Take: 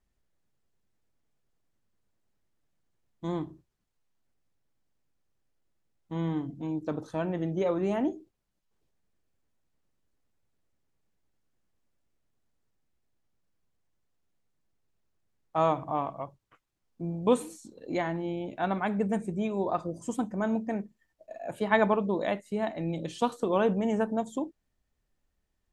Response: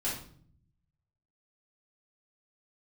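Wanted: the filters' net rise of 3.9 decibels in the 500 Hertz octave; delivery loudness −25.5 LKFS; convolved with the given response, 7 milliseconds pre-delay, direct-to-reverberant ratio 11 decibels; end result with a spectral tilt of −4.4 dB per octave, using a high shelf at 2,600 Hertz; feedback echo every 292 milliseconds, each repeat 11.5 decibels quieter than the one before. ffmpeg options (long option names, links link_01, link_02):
-filter_complex "[0:a]equalizer=frequency=500:width_type=o:gain=5,highshelf=frequency=2600:gain=-3.5,aecho=1:1:292|584|876:0.266|0.0718|0.0194,asplit=2[link_01][link_02];[1:a]atrim=start_sample=2205,adelay=7[link_03];[link_02][link_03]afir=irnorm=-1:irlink=0,volume=-16dB[link_04];[link_01][link_04]amix=inputs=2:normalize=0,volume=2.5dB"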